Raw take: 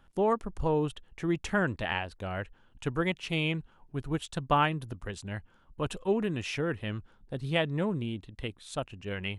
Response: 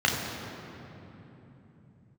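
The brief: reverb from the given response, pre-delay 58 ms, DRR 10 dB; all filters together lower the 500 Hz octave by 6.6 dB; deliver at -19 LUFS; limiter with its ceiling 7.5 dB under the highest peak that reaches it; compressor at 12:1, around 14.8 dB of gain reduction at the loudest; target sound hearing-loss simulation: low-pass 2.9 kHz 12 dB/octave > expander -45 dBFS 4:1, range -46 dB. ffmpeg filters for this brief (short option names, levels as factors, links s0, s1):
-filter_complex "[0:a]equalizer=f=500:t=o:g=-8.5,acompressor=threshold=0.0141:ratio=12,alimiter=level_in=2.99:limit=0.0631:level=0:latency=1,volume=0.335,asplit=2[s0][s1];[1:a]atrim=start_sample=2205,adelay=58[s2];[s1][s2]afir=irnorm=-1:irlink=0,volume=0.0531[s3];[s0][s3]amix=inputs=2:normalize=0,lowpass=2900,agate=range=0.00501:threshold=0.00562:ratio=4,volume=18.8"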